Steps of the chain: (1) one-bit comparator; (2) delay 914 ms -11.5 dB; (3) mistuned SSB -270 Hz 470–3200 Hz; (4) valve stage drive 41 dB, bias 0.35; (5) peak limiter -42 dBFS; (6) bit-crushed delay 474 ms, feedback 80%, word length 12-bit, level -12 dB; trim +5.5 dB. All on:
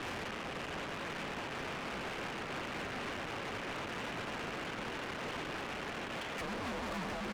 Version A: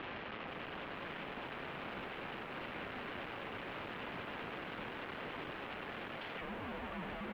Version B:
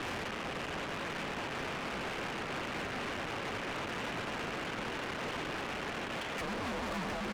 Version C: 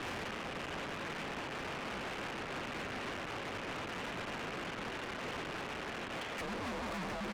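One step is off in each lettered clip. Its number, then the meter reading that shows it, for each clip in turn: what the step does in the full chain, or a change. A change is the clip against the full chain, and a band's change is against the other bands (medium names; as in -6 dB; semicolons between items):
4, crest factor change +2.5 dB; 5, mean gain reduction 2.5 dB; 6, crest factor change -4.5 dB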